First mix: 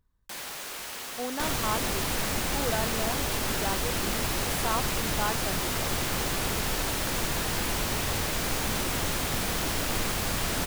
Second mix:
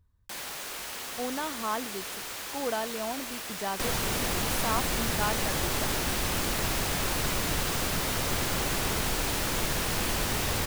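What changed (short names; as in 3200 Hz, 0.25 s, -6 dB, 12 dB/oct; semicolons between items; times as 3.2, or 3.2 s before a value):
speech: add bell 89 Hz +14.5 dB 0.66 oct; second sound: entry +2.40 s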